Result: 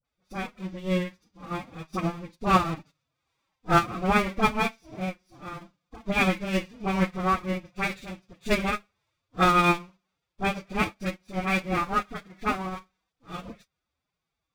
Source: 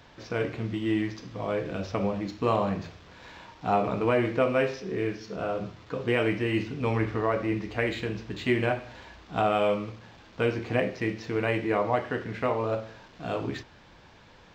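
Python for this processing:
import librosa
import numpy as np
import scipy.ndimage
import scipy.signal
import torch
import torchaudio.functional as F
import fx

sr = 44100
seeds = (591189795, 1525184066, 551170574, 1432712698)

y = fx.lower_of_two(x, sr, delay_ms=0.84)
y = fx.high_shelf(y, sr, hz=6100.0, db=8.5)
y = fx.hum_notches(y, sr, base_hz=60, count=4)
y = fx.pitch_keep_formants(y, sr, semitones=9.0)
y = fx.dispersion(y, sr, late='highs', ms=48.0, hz=1100.0)
y = fx.upward_expand(y, sr, threshold_db=-48.0, expansion=2.5)
y = F.gain(torch.from_numpy(y), 8.0).numpy()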